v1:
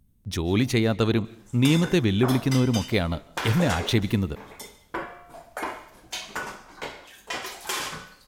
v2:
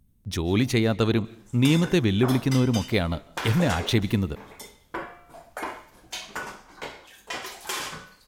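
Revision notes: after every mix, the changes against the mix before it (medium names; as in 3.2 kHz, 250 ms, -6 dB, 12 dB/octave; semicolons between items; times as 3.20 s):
background: send off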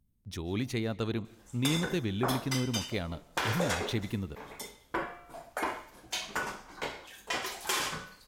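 speech -10.5 dB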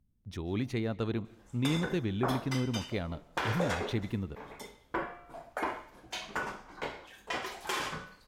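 master: add treble shelf 4.1 kHz -11 dB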